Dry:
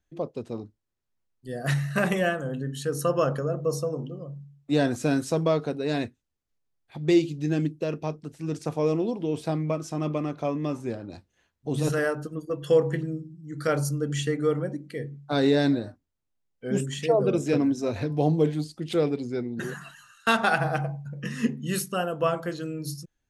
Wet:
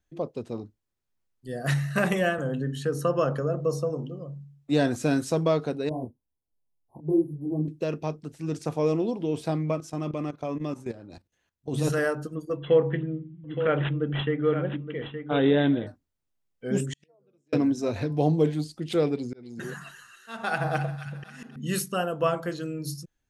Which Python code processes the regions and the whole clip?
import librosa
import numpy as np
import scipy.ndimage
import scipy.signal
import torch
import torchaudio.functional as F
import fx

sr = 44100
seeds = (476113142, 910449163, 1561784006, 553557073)

y = fx.chain(x, sr, fx.high_shelf(hz=4500.0, db=-7.5),
    fx.band_squash(depth_pct=40), at=(2.38, 3.9))
y = fx.chain(y, sr, fx.brickwall_bandstop(low_hz=1100.0, high_hz=9100.0),
    fx.detune_double(cents=47), at=(5.89, 7.68))
y = fx.chain(y, sr, fx.high_shelf(hz=8800.0, db=4.0),
    fx.level_steps(step_db=15), at=(9.8, 11.73))
y = fx.chain(y, sr, fx.echo_single(ms=869, db=-9.5),
    fx.resample_bad(factor=6, down='none', up='filtered'), at=(12.57, 15.87))
y = fx.chain(y, sr, fx.lowpass(hz=9800.0, slope=12),
    fx.gate_flip(shuts_db=-24.0, range_db=-42),
    fx.doppler_dist(depth_ms=0.12), at=(16.87, 17.53))
y = fx.chain(y, sr, fx.auto_swell(attack_ms=456.0),
    fx.echo_wet_highpass(ms=269, feedback_pct=55, hz=1500.0, wet_db=-9.0), at=(19.16, 21.56))